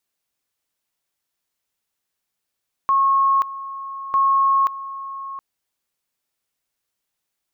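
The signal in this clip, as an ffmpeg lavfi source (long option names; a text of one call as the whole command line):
ffmpeg -f lavfi -i "aevalsrc='pow(10,(-13.5-15*gte(mod(t,1.25),0.53))/20)*sin(2*PI*1090*t)':duration=2.5:sample_rate=44100" out.wav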